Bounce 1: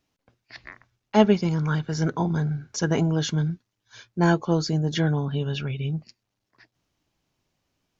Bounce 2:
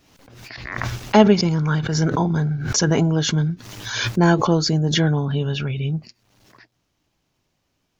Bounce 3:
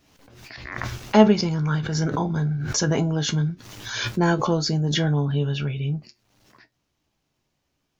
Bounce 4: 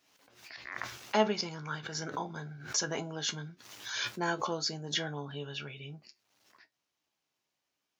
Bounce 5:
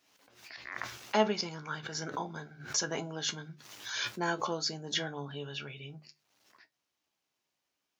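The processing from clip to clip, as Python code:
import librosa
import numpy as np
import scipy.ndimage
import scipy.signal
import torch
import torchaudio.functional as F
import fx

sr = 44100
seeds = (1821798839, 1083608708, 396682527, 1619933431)

y1 = fx.pre_swell(x, sr, db_per_s=45.0)
y1 = y1 * librosa.db_to_amplitude(4.0)
y2 = fx.comb_fb(y1, sr, f0_hz=72.0, decay_s=0.15, harmonics='all', damping=0.0, mix_pct=70)
y3 = fx.highpass(y2, sr, hz=800.0, slope=6)
y3 = y3 * librosa.db_to_amplitude(-6.0)
y4 = fx.hum_notches(y3, sr, base_hz=50, count=3)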